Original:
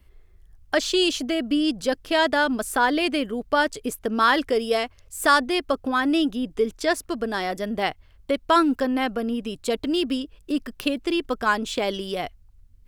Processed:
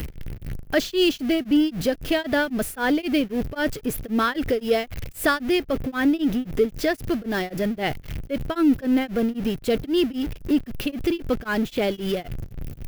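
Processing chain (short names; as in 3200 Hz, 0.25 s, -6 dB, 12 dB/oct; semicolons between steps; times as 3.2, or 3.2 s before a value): zero-crossing step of -27 dBFS; ten-band EQ 125 Hz +6 dB, 1000 Hz -10 dB, 4000 Hz -4 dB, 8000 Hz -10 dB; beating tremolo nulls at 3.8 Hz; gain +3 dB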